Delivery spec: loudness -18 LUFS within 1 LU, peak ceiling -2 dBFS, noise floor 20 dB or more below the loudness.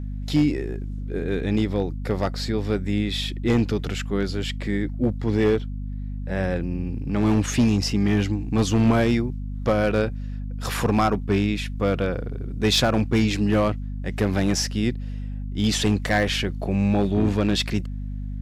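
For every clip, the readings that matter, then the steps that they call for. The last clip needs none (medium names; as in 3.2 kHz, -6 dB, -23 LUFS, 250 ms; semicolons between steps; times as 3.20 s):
clipped samples 0.7%; clipping level -12.5 dBFS; hum 50 Hz; highest harmonic 250 Hz; hum level -28 dBFS; loudness -24.0 LUFS; peak level -12.5 dBFS; loudness target -18.0 LUFS
-> clip repair -12.5 dBFS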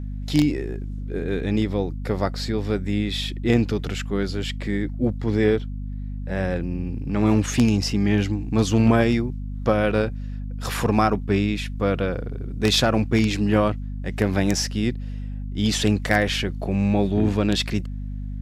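clipped samples 0.0%; hum 50 Hz; highest harmonic 250 Hz; hum level -27 dBFS
-> hum notches 50/100/150/200/250 Hz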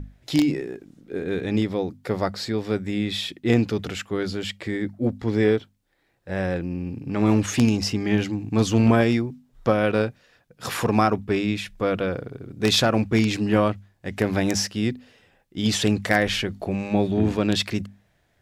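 hum not found; loudness -23.5 LUFS; peak level -3.5 dBFS; loudness target -18.0 LUFS
-> trim +5.5 dB; peak limiter -2 dBFS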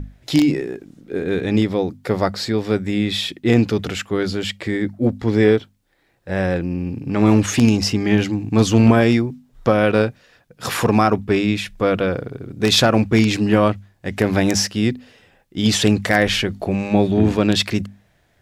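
loudness -18.5 LUFS; peak level -2.0 dBFS; noise floor -60 dBFS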